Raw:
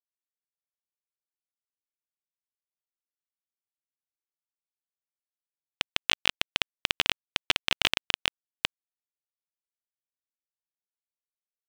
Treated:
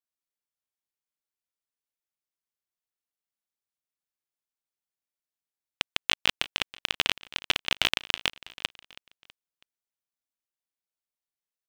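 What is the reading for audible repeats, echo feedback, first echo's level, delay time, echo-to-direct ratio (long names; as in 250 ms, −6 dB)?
3, 44%, −19.0 dB, 325 ms, −18.0 dB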